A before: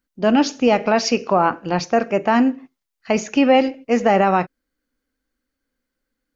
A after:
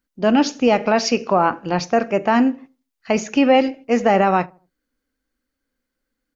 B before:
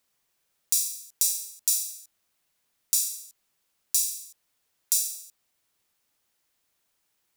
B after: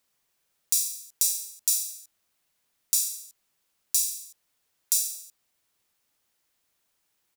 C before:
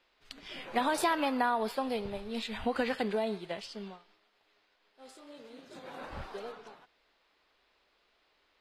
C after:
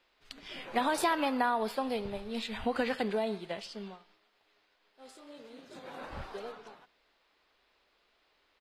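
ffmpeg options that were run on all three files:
ffmpeg -i in.wav -filter_complex "[0:a]asplit=2[link_01][link_02];[link_02]adelay=79,lowpass=frequency=890:poles=1,volume=-22dB,asplit=2[link_03][link_04];[link_04]adelay=79,lowpass=frequency=890:poles=1,volume=0.38,asplit=2[link_05][link_06];[link_06]adelay=79,lowpass=frequency=890:poles=1,volume=0.38[link_07];[link_01][link_03][link_05][link_07]amix=inputs=4:normalize=0" out.wav

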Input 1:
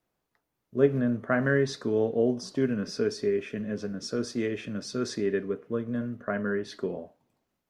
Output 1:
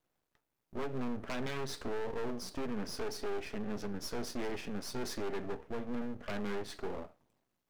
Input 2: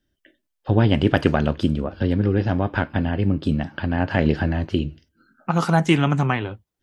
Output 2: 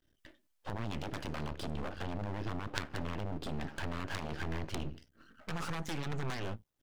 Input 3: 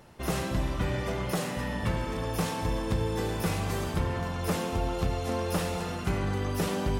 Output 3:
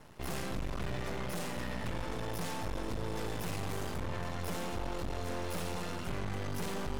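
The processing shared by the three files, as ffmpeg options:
ffmpeg -i in.wav -af "acompressor=threshold=-23dB:ratio=12,aeval=exprs='0.355*(cos(1*acos(clip(val(0)/0.355,-1,1)))-cos(1*PI/2))+0.141*(cos(4*acos(clip(val(0)/0.355,-1,1)))-cos(4*PI/2))':channel_layout=same,aeval=exprs='max(val(0),0)':channel_layout=same,volume=2dB" out.wav

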